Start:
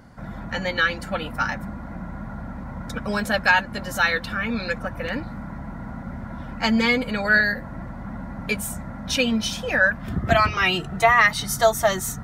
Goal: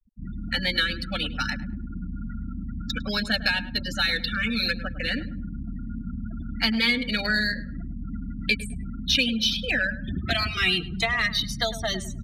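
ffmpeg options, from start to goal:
-filter_complex "[0:a]bandreject=f=50:t=h:w=6,bandreject=f=100:t=h:w=6,bandreject=f=150:t=h:w=6,bandreject=f=200:t=h:w=6,acrossover=split=480|2700[s0][s1][s2];[s0]acompressor=threshold=0.0398:ratio=4[s3];[s1]acompressor=threshold=0.0398:ratio=4[s4];[s2]acompressor=threshold=0.0112:ratio=4[s5];[s3][s4][s5]amix=inputs=3:normalize=0,equalizer=f=125:t=o:w=1:g=-7,equalizer=f=500:t=o:w=1:g=-8,equalizer=f=1000:t=o:w=1:g=-10,equalizer=f=4000:t=o:w=1:g=11,acrossover=split=710[s6][s7];[s7]acrusher=bits=6:mode=log:mix=0:aa=0.000001[s8];[s6][s8]amix=inputs=2:normalize=0,afftfilt=real='re*gte(hypot(re,im),0.0251)':imag='im*gte(hypot(re,im),0.0251)':win_size=1024:overlap=0.75,asplit=2[s9][s10];[s10]adynamicsmooth=sensitivity=6.5:basefreq=4100,volume=0.708[s11];[s9][s11]amix=inputs=2:normalize=0,asplit=2[s12][s13];[s13]adelay=104,lowpass=f=1300:p=1,volume=0.251,asplit=2[s14][s15];[s15]adelay=104,lowpass=f=1300:p=1,volume=0.33,asplit=2[s16][s17];[s17]adelay=104,lowpass=f=1300:p=1,volume=0.33[s18];[s12][s14][s16][s18]amix=inputs=4:normalize=0"

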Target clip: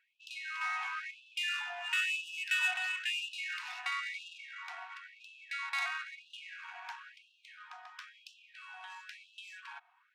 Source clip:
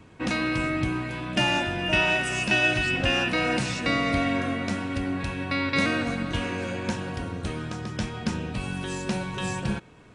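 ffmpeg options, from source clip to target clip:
-filter_complex "[0:a]asettb=1/sr,asplit=3[s0][s1][s2];[s0]atrim=end=0.614[s3];[s1]atrim=start=0.61:end=1.11,asetpts=PTS-STARTPTS,afade=t=in:d=0.004:c=qsin,afade=t=out:st=0.496:d=0.004:c=qsin,asplit=2[s4][s5];[s5]highpass=f=720:p=1,volume=7.08,asoftclip=type=tanh:threshold=0.2[s6];[s4][s6]amix=inputs=2:normalize=0,lowpass=f=1800:p=1,volume=0.501[s7];[s2]atrim=start=1.106[s8];[s3][s7]acrossfade=d=0.004:c1=hsin:c2=qsin[s9];[s9][s8]acrossfade=d=0.004:c1=qsin:c2=hsin,adynamicsmooth=sensitivity=2:basefreq=2100,afftfilt=real='re*gte(b*sr/1024,650*pow(2600/650,0.5+0.5*sin(2*PI*0.99*pts/sr)))':imag='im*gte(b*sr/1024,650*pow(2600/650,0.5+0.5*sin(2*PI*0.99*pts/sr)))':win_size=1024:overlap=0.75,volume=0.447"

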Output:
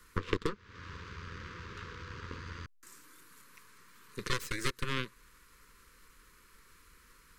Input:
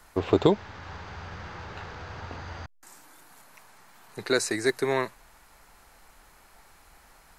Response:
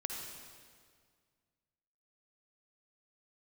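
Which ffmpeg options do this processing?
-af "aeval=exprs='0.501*(cos(1*acos(clip(val(0)/0.501,-1,1)))-cos(1*PI/2))+0.112*(cos(4*acos(clip(val(0)/0.501,-1,1)))-cos(4*PI/2))+0.0112*(cos(5*acos(clip(val(0)/0.501,-1,1)))-cos(5*PI/2))+0.112*(cos(7*acos(clip(val(0)/0.501,-1,1)))-cos(7*PI/2))+0.0501*(cos(8*acos(clip(val(0)/0.501,-1,1)))-cos(8*PI/2))':c=same,acompressor=threshold=0.0355:ratio=16,asuperstop=centerf=720:order=8:qfactor=1.5,volume=1.41"

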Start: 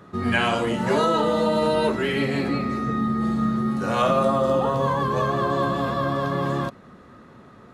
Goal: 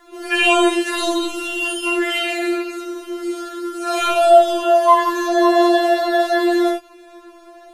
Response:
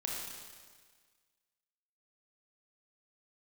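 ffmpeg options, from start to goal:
-filter_complex "[0:a]highshelf=f=4300:g=9[s0];[1:a]atrim=start_sample=2205,atrim=end_sample=4410[s1];[s0][s1]afir=irnorm=-1:irlink=0,afftfilt=real='re*4*eq(mod(b,16),0)':imag='im*4*eq(mod(b,16),0)':win_size=2048:overlap=0.75,volume=2.51"

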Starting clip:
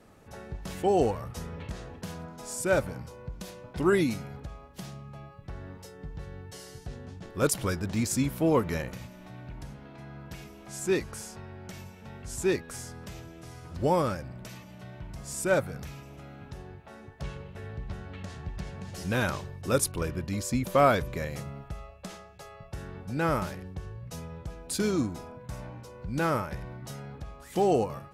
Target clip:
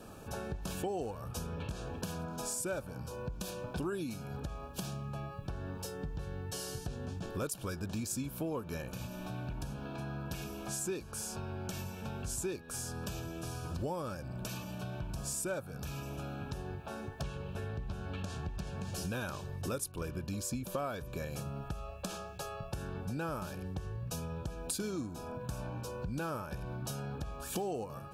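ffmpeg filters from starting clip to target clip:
-af "highshelf=f=9100:g=6.5,acompressor=threshold=0.00794:ratio=6,asuperstop=centerf=2000:order=12:qfactor=4.3,volume=2"

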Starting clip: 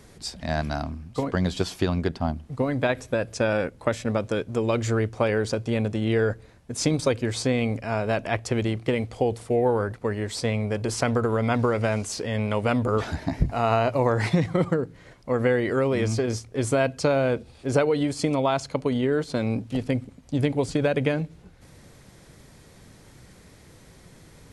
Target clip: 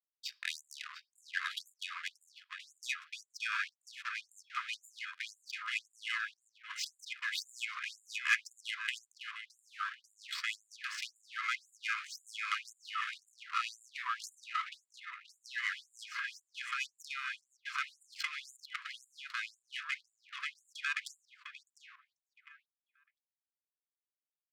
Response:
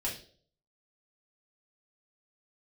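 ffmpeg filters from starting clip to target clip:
-filter_complex "[0:a]highpass=f=80:w=0.5412,highpass=f=80:w=1.3066,lowshelf=f=500:g=-2.5,aecho=1:1:2.4:0.71,aeval=exprs='val(0)*gte(abs(val(0)),0.0211)':c=same,acompressor=threshold=0.0708:ratio=6,asoftclip=type=tanh:threshold=0.119,equalizer=f=2700:t=o:w=1.1:g=5.5,adynamicsmooth=sensitivity=2:basefreq=1300,asplit=2[s0][s1];[s1]adelay=703,lowpass=f=2100:p=1,volume=0.501,asplit=2[s2][s3];[s3]adelay=703,lowpass=f=2100:p=1,volume=0.25,asplit=2[s4][s5];[s5]adelay=703,lowpass=f=2100:p=1,volume=0.25[s6];[s0][s2][s4][s6]amix=inputs=4:normalize=0,asplit=2[s7][s8];[1:a]atrim=start_sample=2205[s9];[s8][s9]afir=irnorm=-1:irlink=0,volume=0.0668[s10];[s7][s10]amix=inputs=2:normalize=0,afftfilt=real='re*gte(b*sr/1024,980*pow(7000/980,0.5+0.5*sin(2*PI*1.9*pts/sr)))':imag='im*gte(b*sr/1024,980*pow(7000/980,0.5+0.5*sin(2*PI*1.9*pts/sr)))':win_size=1024:overlap=0.75,volume=1.41"

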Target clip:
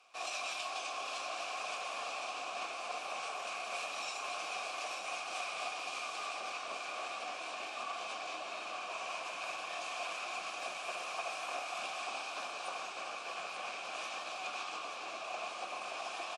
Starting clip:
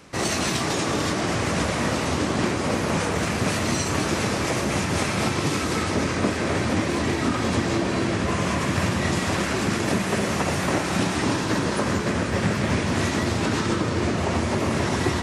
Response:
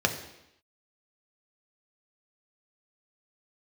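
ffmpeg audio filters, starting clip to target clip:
-filter_complex "[0:a]asetrate=41013,aresample=44100,asplit=3[s0][s1][s2];[s0]bandpass=f=730:t=q:w=8,volume=1[s3];[s1]bandpass=f=1090:t=q:w=8,volume=0.501[s4];[s2]bandpass=f=2440:t=q:w=8,volume=0.355[s5];[s3][s4][s5]amix=inputs=3:normalize=0,aderivative,asplit=2[s6][s7];[s7]aecho=0:1:885:0.422[s8];[s6][s8]amix=inputs=2:normalize=0,volume=4.22"

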